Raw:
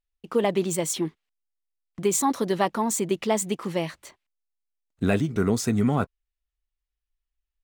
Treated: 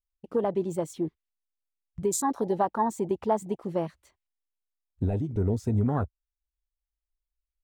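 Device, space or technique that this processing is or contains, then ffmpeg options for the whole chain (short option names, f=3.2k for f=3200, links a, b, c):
car stereo with a boomy subwoofer: -filter_complex "[0:a]lowshelf=f=110:t=q:w=1.5:g=11,alimiter=limit=-17.5dB:level=0:latency=1:release=434,afwtdn=0.0224,asettb=1/sr,asplit=3[a][b][c];[a]atrim=end=2.334[d];[b]atrim=start=2.33:end=3.65,asetpts=PTS-STARTPTS,afade=t=in:d=0.004:c=qsin,afade=t=out:st=1.316:d=0.004:c=qsin,equalizer=f=840:w=2.9:g=6[e];[c]atrim=start=3.646[f];[d][e]acrossfade=d=0.004:c1=hsin:c2=qsin[g];[g][f]acrossfade=d=0.004:c1=qsin:c2=hsin,volume=1dB"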